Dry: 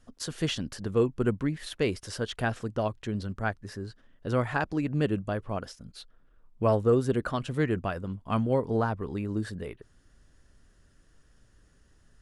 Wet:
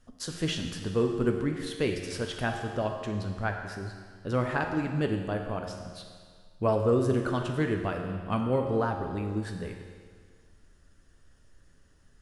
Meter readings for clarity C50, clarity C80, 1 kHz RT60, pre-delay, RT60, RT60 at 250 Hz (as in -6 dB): 4.5 dB, 6.0 dB, 1.8 s, 11 ms, 1.8 s, 1.8 s